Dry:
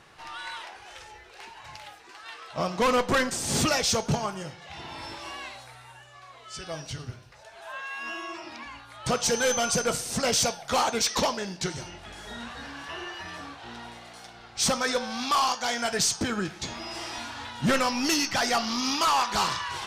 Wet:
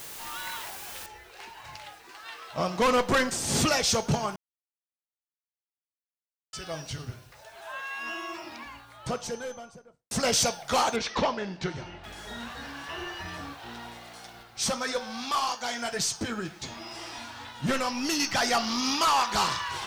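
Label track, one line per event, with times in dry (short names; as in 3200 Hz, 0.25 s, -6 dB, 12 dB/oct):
1.060000	1.060000	noise floor step -42 dB -63 dB
4.360000	6.530000	mute
8.350000	10.110000	studio fade out
10.960000	12.040000	LPF 3100 Hz
12.980000	13.530000	low shelf 180 Hz +8 dB
14.430000	18.200000	flange 1.9 Hz, delay 5.7 ms, depth 4 ms, regen -46%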